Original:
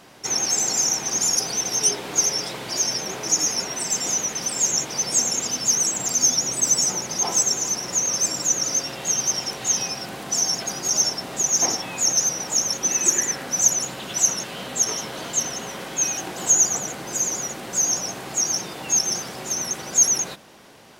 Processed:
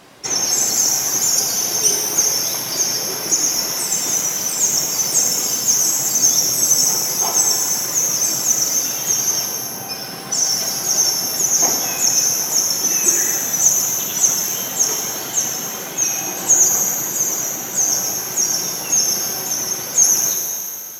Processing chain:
reverb reduction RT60 1.8 s
0:09.46–0:09.89: low-pass filter 1,100 Hz 12 dB per octave
reverb with rising layers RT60 2.4 s, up +12 semitones, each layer −8 dB, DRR 0.5 dB
level +3 dB

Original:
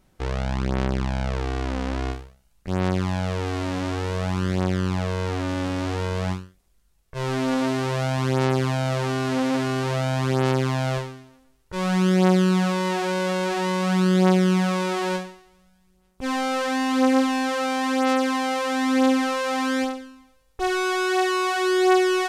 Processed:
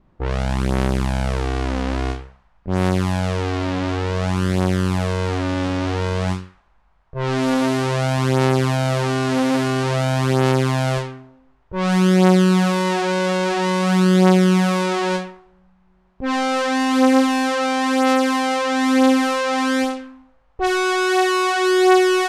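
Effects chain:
noise in a band 830–11,000 Hz −49 dBFS
low-pass that shuts in the quiet parts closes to 420 Hz, open at −19 dBFS
level +4.5 dB

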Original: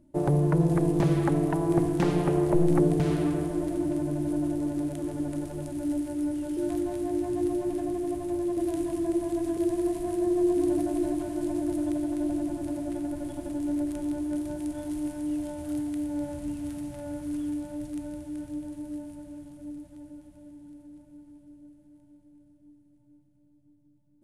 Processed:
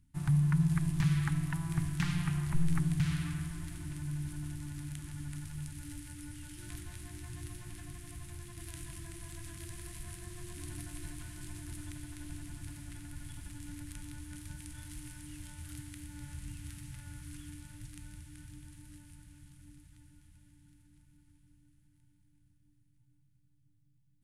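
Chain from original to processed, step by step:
Chebyshev band-stop filter 130–1,700 Hz, order 2

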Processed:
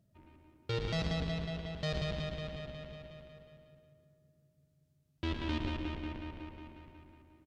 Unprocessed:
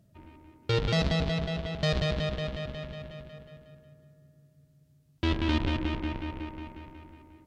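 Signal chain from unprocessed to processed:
single-tap delay 113 ms −8 dB
level −8.5 dB

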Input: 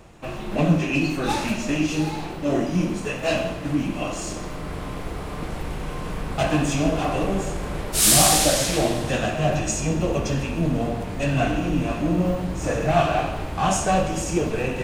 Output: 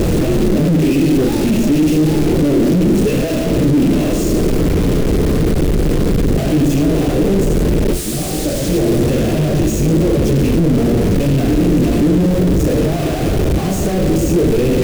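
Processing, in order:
sign of each sample alone
low shelf with overshoot 600 Hz +13 dB, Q 1.5
level −2 dB

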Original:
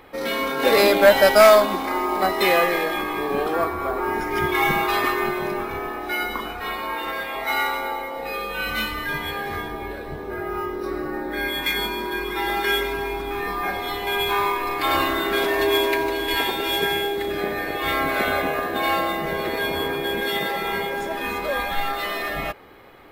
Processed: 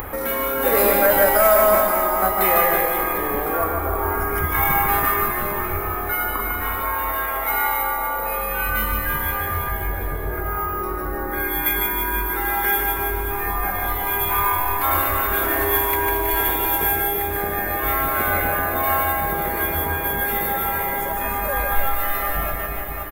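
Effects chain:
low shelf with overshoot 110 Hz +6.5 dB, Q 1.5
on a send: reverse bouncing-ball delay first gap 150 ms, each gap 1.15×, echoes 5
on the sum: upward compression, threshold −19 dBFS
drawn EQ curve 140 Hz 0 dB, 340 Hz −5 dB, 1,400 Hz 0 dB, 4,300 Hz −15 dB, 14,000 Hz +14 dB
boost into a limiter +5 dB
level −4 dB

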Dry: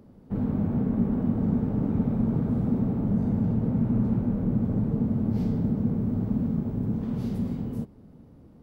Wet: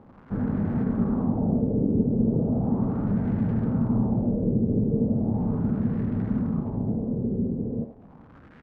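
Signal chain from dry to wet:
adaptive Wiener filter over 9 samples
surface crackle 320 per second −38 dBFS
far-end echo of a speakerphone 80 ms, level −7 dB
auto-filter low-pass sine 0.37 Hz 430–1,800 Hz

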